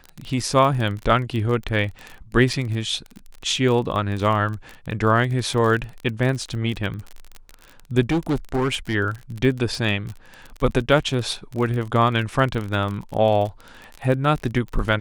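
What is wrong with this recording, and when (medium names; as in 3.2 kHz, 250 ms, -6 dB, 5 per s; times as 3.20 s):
crackle 35 per s -27 dBFS
2.53 s: dropout 4.5 ms
8.09–8.95 s: clipped -17 dBFS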